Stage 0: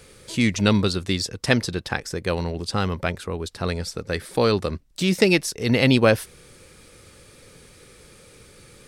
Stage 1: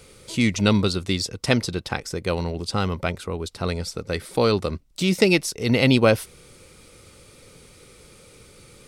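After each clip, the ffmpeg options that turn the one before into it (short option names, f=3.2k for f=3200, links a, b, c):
-af "bandreject=f=1.7k:w=7.2"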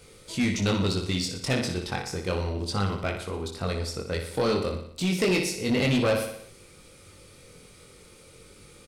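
-af "flanger=delay=20:depth=2.8:speed=0.32,aecho=1:1:60|120|180|240|300|360:0.376|0.203|0.11|0.0592|0.032|0.0173,asoftclip=type=tanh:threshold=-18dB"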